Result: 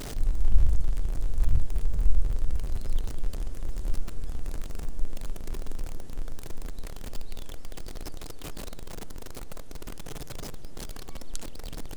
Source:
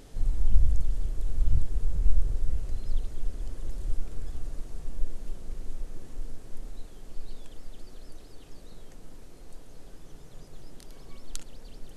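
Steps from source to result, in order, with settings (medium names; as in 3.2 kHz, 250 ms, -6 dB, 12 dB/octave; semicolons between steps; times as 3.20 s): jump at every zero crossing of -32 dBFS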